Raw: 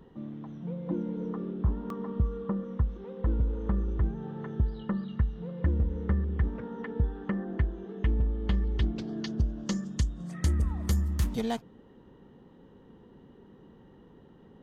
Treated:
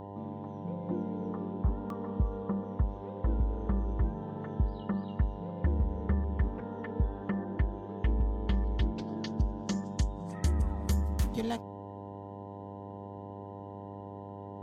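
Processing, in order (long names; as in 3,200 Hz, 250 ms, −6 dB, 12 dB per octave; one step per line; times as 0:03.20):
hum with harmonics 100 Hz, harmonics 10, −41 dBFS −2 dB per octave
level −2.5 dB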